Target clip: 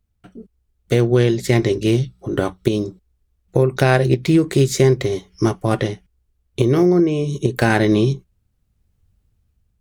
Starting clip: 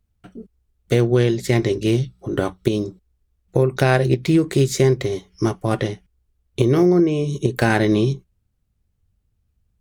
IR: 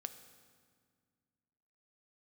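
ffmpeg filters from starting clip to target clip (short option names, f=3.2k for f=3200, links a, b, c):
-af "dynaudnorm=f=280:g=7:m=11dB,volume=-1dB"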